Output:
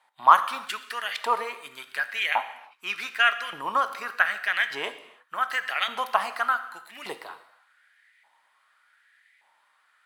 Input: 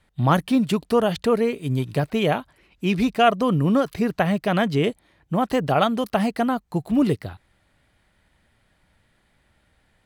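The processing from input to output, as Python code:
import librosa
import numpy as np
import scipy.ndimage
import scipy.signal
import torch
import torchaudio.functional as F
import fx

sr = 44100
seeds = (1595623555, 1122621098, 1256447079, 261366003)

y = fx.filter_lfo_highpass(x, sr, shape='saw_up', hz=0.85, low_hz=840.0, high_hz=2100.0, q=5.0)
y = fx.rev_gated(y, sr, seeds[0], gate_ms=350, shape='falling', drr_db=10.0)
y = F.gain(torch.from_numpy(y), -3.0).numpy()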